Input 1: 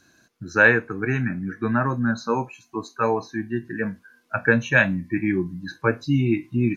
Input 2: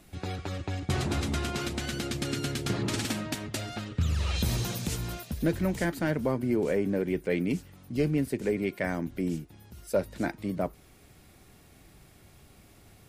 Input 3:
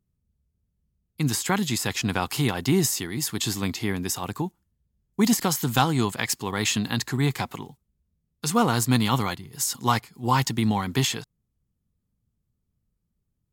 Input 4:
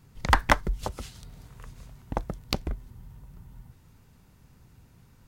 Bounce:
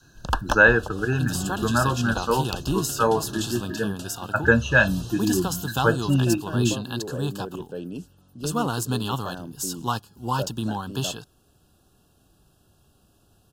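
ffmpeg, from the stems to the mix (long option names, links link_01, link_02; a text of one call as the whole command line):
ffmpeg -i stem1.wav -i stem2.wav -i stem3.wav -i stem4.wav -filter_complex "[0:a]volume=1.5dB[link_01];[1:a]adelay=450,volume=-5.5dB[link_02];[2:a]volume=-4dB[link_03];[3:a]volume=-3dB[link_04];[link_01][link_02][link_03][link_04]amix=inputs=4:normalize=0,adynamicequalizer=threshold=0.0178:dfrequency=240:dqfactor=1.7:tfrequency=240:tqfactor=1.7:attack=5:release=100:ratio=0.375:range=2.5:mode=cutabove:tftype=bell,asuperstop=centerf=2100:order=12:qfactor=2.4" out.wav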